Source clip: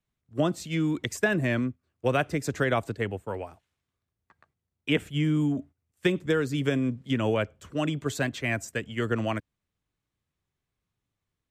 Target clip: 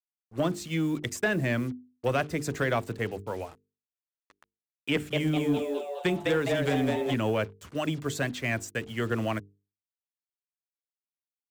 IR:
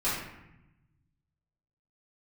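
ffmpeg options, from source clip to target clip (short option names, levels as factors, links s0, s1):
-filter_complex "[0:a]acrusher=bits=7:mix=0:aa=0.5,bandreject=f=50:t=h:w=6,bandreject=f=100:t=h:w=6,bandreject=f=150:t=h:w=6,bandreject=f=200:t=h:w=6,bandreject=f=250:t=h:w=6,bandreject=f=300:t=h:w=6,bandreject=f=350:t=h:w=6,bandreject=f=400:t=h:w=6,bandreject=f=450:t=h:w=6,asettb=1/sr,asplit=3[s0][s1][s2];[s0]atrim=end=4.924[s3];[s1]atrim=start=4.92:end=7.14,asetpts=PTS-STARTPTS,afade=t=in:d=0.004:c=qsin,afade=t=out:st=2.216:d=0.004:c=qsin,asplit=7[s4][s5][s6][s7][s8][s9][s10];[s5]adelay=206,afreqshift=140,volume=0.668[s11];[s6]adelay=412,afreqshift=280,volume=0.327[s12];[s7]adelay=618,afreqshift=420,volume=0.16[s13];[s8]adelay=824,afreqshift=560,volume=0.0785[s14];[s9]adelay=1030,afreqshift=700,volume=0.0385[s15];[s10]adelay=1236,afreqshift=840,volume=0.0188[s16];[s4][s11][s12][s13][s14][s15][s16]amix=inputs=7:normalize=0,atrim=end_sample=97902[s17];[s2]atrim=start=7.136[s18];[s3][s17]acrossfade=d=0.004:c1=hsin:c2=qsin[s19];[s19][s18]acrossfade=d=0.004:c1=qsin:c2=hsin,asoftclip=type=tanh:threshold=0.141"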